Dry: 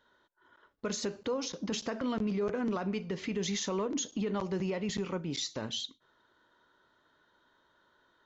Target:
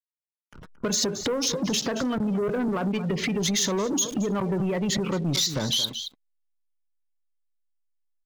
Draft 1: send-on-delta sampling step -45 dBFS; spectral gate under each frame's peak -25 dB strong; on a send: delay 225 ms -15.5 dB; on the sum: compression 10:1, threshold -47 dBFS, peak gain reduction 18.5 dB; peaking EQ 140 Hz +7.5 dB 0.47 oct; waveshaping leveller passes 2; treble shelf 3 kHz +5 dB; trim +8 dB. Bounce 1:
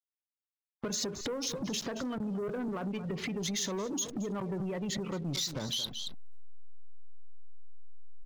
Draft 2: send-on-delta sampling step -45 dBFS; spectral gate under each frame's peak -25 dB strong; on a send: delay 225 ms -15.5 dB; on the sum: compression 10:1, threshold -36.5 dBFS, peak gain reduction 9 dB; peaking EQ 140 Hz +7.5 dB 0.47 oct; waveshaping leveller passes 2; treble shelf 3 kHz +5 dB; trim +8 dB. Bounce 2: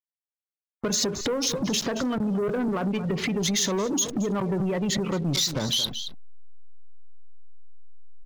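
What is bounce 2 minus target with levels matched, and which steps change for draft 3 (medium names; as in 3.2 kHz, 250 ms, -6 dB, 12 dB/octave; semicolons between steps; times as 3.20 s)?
send-on-delta sampling: distortion +10 dB
change: send-on-delta sampling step -52.5 dBFS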